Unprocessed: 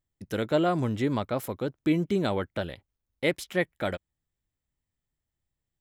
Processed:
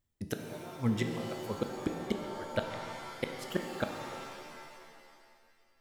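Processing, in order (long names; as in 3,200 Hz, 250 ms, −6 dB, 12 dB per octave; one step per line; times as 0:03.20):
reverb reduction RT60 1.6 s
gate with flip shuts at −21 dBFS, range −28 dB
reverb with rising layers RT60 2.1 s, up +7 semitones, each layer −2 dB, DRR 4.5 dB
level +2.5 dB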